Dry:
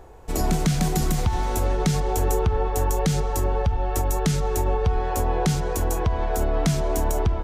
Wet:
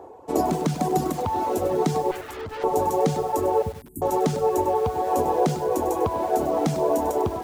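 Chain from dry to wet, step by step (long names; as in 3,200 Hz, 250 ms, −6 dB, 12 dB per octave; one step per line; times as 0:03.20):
high-pass filter 81 Hz 24 dB per octave
flat-topped bell 520 Hz +13 dB 2.5 octaves
feedback delay with all-pass diffusion 1,119 ms, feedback 54%, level −11.5 dB
0:02.11–0:02.64: tube saturation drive 23 dB, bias 0.65
tuned comb filter 150 Hz, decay 1.5 s, mix 50%
0:03.62–0:04.02: elliptic band-stop filter 250–9,400 Hz, stop band 40 dB
reverb reduction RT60 1.1 s
feedback echo at a low word length 99 ms, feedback 35%, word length 6 bits, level −11 dB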